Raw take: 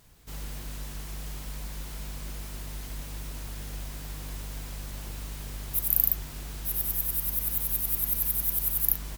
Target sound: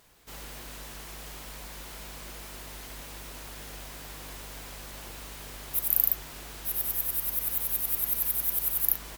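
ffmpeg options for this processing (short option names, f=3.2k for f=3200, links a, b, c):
-af "bass=f=250:g=-12,treble=f=4k:g=-3,volume=2.5dB"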